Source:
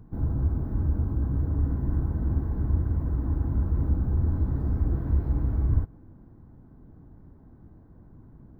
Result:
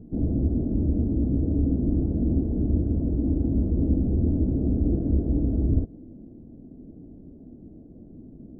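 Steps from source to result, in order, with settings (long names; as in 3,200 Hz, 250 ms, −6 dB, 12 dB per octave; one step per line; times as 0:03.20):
drawn EQ curve 130 Hz 0 dB, 240 Hz +12 dB, 650 Hz +6 dB, 980 Hz −18 dB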